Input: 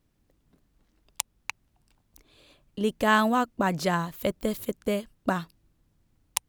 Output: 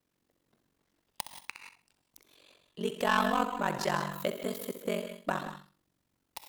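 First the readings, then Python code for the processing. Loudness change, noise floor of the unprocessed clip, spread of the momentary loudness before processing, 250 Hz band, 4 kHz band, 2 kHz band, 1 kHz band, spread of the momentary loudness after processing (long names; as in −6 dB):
−5.0 dB, −71 dBFS, 14 LU, −8.0 dB, −3.5 dB, −5.0 dB, −4.0 dB, 19 LU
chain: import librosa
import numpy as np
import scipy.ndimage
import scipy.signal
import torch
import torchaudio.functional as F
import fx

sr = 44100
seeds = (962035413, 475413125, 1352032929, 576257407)

y = fx.tracing_dist(x, sr, depth_ms=0.11)
y = fx.highpass(y, sr, hz=350.0, slope=6)
y = 10.0 ** (-15.5 / 20.0) * np.tanh(y / 10.0 ** (-15.5 / 20.0))
y = fx.room_flutter(y, sr, wall_m=11.0, rt60_s=0.36)
y = fx.rev_gated(y, sr, seeds[0], gate_ms=200, shape='rising', drr_db=8.5)
y = y * np.sin(2.0 * np.pi * 23.0 * np.arange(len(y)) / sr)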